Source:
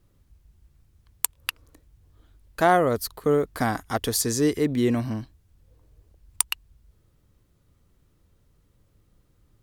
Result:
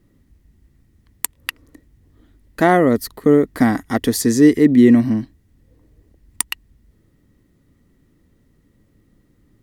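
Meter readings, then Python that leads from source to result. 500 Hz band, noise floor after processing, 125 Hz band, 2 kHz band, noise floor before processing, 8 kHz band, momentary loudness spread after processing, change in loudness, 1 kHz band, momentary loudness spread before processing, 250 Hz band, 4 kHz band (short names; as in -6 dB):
+6.5 dB, -60 dBFS, +6.0 dB, +5.5 dB, -65 dBFS, +1.5 dB, 15 LU, +8.5 dB, +3.0 dB, 13 LU, +13.0 dB, +2.0 dB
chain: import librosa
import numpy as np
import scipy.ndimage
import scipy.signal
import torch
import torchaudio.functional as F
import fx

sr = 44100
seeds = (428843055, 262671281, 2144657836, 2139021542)

y = fx.small_body(x, sr, hz=(250.0, 1900.0), ring_ms=20, db=13)
y = F.gain(torch.from_numpy(y), 1.5).numpy()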